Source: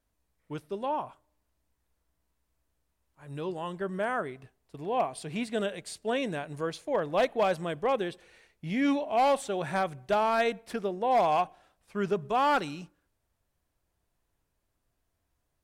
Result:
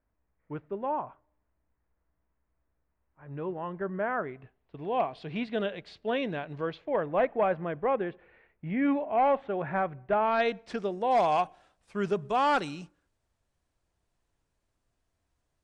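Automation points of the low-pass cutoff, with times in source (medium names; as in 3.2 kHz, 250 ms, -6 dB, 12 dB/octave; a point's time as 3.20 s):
low-pass 24 dB/octave
3.99 s 2.1 kHz
5.03 s 3.9 kHz
6.56 s 3.9 kHz
7.21 s 2.2 kHz
10.20 s 2.2 kHz
10.40 s 4.4 kHz
10.95 s 9.2 kHz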